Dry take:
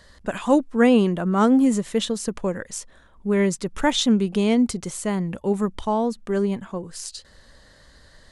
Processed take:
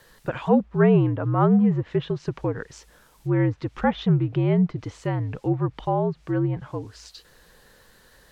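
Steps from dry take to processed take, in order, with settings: distance through air 170 m; word length cut 10-bit, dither triangular; low-pass that closes with the level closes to 1.9 kHz, closed at -18.5 dBFS; bass shelf 70 Hz -11 dB; frequency shift -63 Hz

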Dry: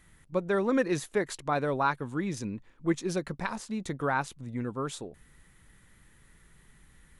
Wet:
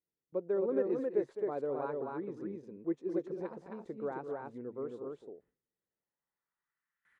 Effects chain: band-pass sweep 430 Hz -> 1.6 kHz, 5.63–6.85 s; gate with hold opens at -58 dBFS; loudspeakers at several distances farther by 72 m -11 dB, 91 m -3 dB; trim -2.5 dB

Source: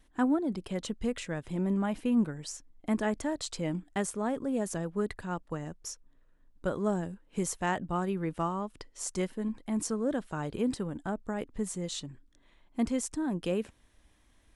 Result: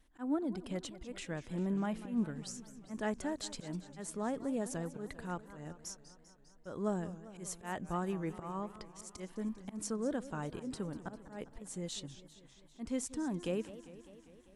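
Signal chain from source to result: slow attack 161 ms; modulated delay 199 ms, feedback 68%, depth 214 cents, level -15.5 dB; trim -5 dB

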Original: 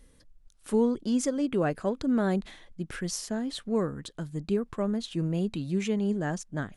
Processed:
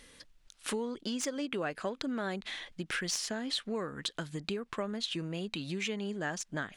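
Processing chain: tracing distortion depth 0.02 ms; peaking EQ 2.9 kHz +11 dB 2.7 oct; compression 6:1, threshold -34 dBFS, peak gain reduction 15 dB; bass shelf 140 Hz -11.5 dB; trim +3 dB

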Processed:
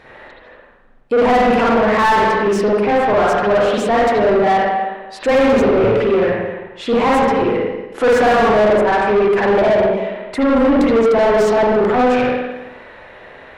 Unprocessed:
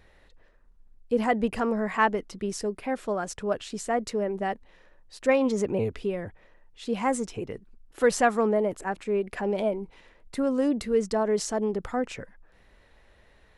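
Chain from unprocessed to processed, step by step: spring tank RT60 1 s, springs 44/52 ms, chirp 35 ms, DRR -6.5 dB; overdrive pedal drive 29 dB, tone 1.3 kHz, clips at -3 dBFS; trim -2 dB

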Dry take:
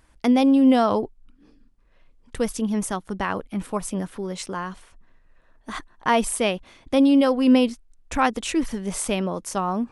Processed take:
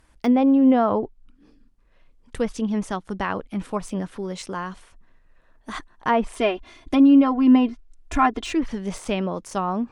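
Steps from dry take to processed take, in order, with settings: low-pass that closes with the level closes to 1.8 kHz, closed at -16 dBFS; 6.36–8.53 s: comb 2.9 ms, depth 82%; de-esser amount 70%

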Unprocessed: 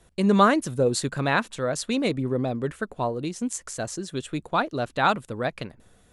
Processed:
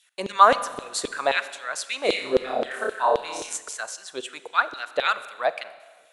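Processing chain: 2.05–3.57 s: flutter echo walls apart 5.2 m, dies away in 0.93 s; LFO high-pass saw down 3.8 Hz 430–3500 Hz; Schroeder reverb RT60 1.5 s, combs from 31 ms, DRR 14 dB

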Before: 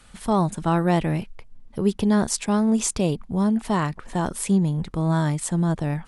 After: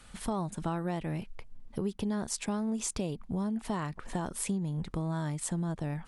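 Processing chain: compression 5:1, threshold -28 dBFS, peak gain reduction 12.5 dB; trim -2.5 dB

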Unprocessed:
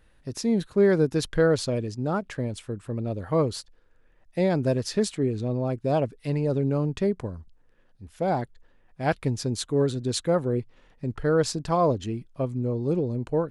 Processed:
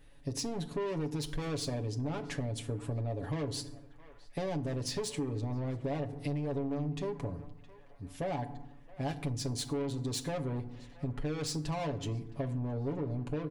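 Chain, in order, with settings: saturation -27 dBFS, distortion -7 dB; peaking EQ 1.4 kHz -7 dB 0.49 oct; comb 7.1 ms, depth 71%; band-passed feedback delay 667 ms, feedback 64%, band-pass 1.5 kHz, level -22 dB; FDN reverb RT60 0.71 s, low-frequency decay 1.5×, high-frequency decay 0.6×, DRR 11 dB; compression, threshold -32 dBFS, peak gain reduction 10.5 dB

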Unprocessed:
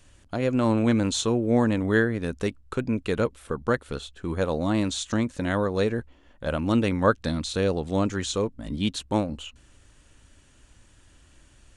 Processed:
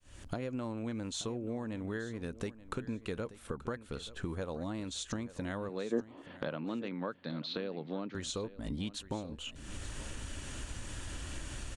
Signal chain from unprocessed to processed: fade-in on the opening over 0.65 s; 5.69–8.15 s: Chebyshev band-pass 140–4400 Hz, order 4; compression 10:1, threshold -52 dBFS, peak gain reduction 36 dB; 5.91–6.22 s: time-frequency box 230–1300 Hz +11 dB; feedback delay 880 ms, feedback 22%, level -16.5 dB; trim +15.5 dB

